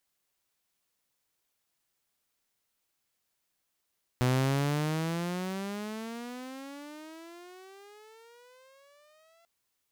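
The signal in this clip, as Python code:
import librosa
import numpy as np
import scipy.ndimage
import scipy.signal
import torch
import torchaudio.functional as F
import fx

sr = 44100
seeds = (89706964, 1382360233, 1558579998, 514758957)

y = fx.riser_tone(sr, length_s=5.24, level_db=-20.5, wave='saw', hz=124.0, rise_st=29.5, swell_db=-38.5)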